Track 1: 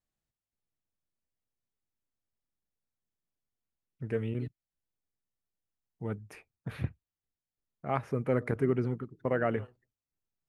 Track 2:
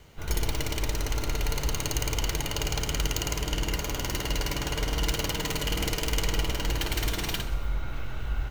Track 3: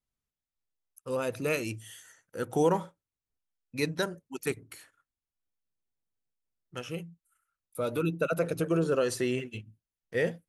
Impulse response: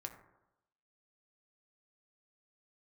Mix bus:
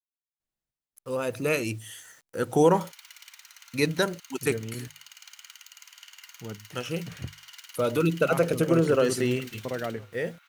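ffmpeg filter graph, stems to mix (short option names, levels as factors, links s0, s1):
-filter_complex "[0:a]bandreject=f=50:t=h:w=6,bandreject=f=100:t=h:w=6,bandreject=f=150:t=h:w=6,adelay=400,volume=0.708[s0];[1:a]highpass=f=1300:w=0.5412,highpass=f=1300:w=1.3066,alimiter=limit=0.141:level=0:latency=1:release=346,adelay=2500,volume=0.224[s1];[2:a]dynaudnorm=f=150:g=17:m=2.51,acrusher=bits=8:mix=0:aa=0.000001,volume=0.75[s2];[s0][s1][s2]amix=inputs=3:normalize=0"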